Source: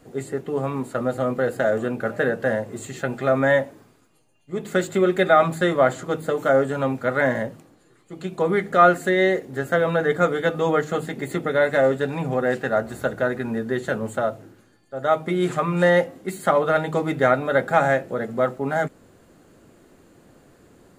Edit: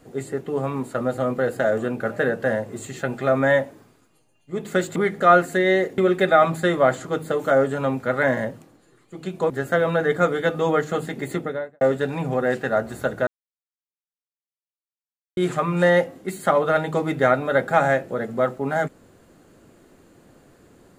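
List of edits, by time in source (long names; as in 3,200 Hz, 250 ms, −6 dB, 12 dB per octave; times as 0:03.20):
0:08.48–0:09.50: move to 0:04.96
0:11.29–0:11.81: fade out and dull
0:13.27–0:15.37: silence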